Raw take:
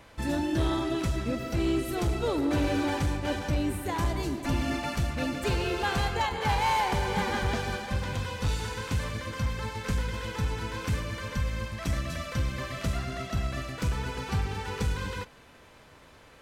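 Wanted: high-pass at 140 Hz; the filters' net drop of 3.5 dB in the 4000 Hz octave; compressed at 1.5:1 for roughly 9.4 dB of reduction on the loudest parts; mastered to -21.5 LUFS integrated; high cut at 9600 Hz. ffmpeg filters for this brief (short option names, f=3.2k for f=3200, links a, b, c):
-af "highpass=140,lowpass=9.6k,equalizer=f=4k:t=o:g=-4.5,acompressor=threshold=-51dB:ratio=1.5,volume=19dB"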